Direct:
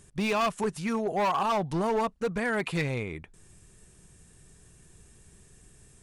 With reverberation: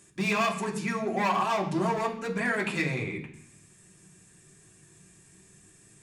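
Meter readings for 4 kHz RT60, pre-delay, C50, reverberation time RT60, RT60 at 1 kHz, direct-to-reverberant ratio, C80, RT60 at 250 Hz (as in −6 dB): 0.85 s, 3 ms, 9.5 dB, 0.65 s, 0.65 s, −1.5 dB, 12.5 dB, 0.95 s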